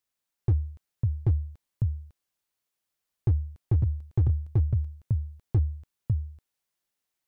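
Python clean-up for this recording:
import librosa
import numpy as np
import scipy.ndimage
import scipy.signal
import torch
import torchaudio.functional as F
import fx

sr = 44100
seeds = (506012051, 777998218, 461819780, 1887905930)

y = fx.fix_declip(x, sr, threshold_db=-17.5)
y = fx.fix_echo_inverse(y, sr, delay_ms=552, level_db=-4.5)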